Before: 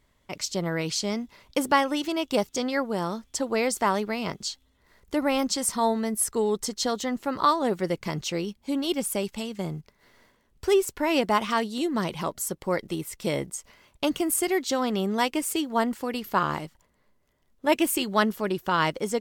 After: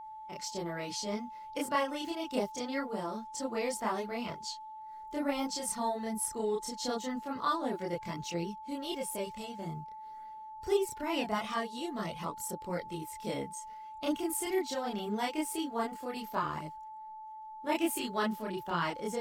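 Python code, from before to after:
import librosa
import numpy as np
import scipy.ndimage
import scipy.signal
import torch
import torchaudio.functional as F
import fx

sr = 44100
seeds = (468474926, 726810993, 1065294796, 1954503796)

y = fx.spec_quant(x, sr, step_db=15)
y = fx.chorus_voices(y, sr, voices=2, hz=0.24, base_ms=28, depth_ms=5.0, mix_pct=55)
y = y + 10.0 ** (-38.0 / 20.0) * np.sin(2.0 * np.pi * 870.0 * np.arange(len(y)) / sr)
y = y * 10.0 ** (-5.5 / 20.0)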